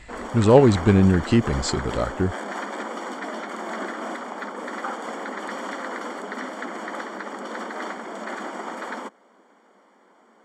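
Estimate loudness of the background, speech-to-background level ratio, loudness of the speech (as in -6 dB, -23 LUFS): -32.5 LUFS, 13.0 dB, -19.5 LUFS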